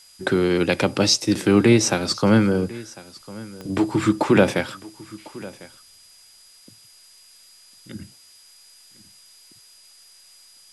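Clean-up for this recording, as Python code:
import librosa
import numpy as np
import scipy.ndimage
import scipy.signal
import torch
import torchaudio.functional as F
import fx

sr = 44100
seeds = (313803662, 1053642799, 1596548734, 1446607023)

y = fx.fix_declick_ar(x, sr, threshold=10.0)
y = fx.notch(y, sr, hz=4900.0, q=30.0)
y = fx.noise_reduce(y, sr, print_start_s=6.16, print_end_s=6.66, reduce_db=15.0)
y = fx.fix_echo_inverse(y, sr, delay_ms=1050, level_db=-20.0)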